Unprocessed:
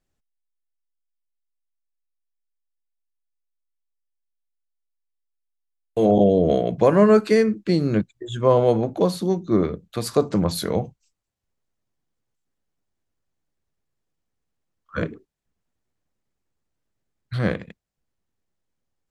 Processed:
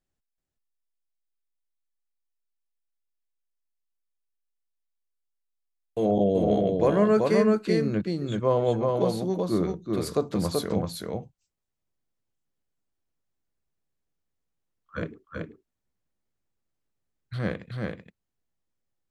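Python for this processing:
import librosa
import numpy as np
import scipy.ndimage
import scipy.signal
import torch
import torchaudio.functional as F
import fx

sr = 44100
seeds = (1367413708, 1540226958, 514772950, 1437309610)

y = x + 10.0 ** (-3.0 / 20.0) * np.pad(x, (int(381 * sr / 1000.0), 0))[:len(x)]
y = y * librosa.db_to_amplitude(-6.5)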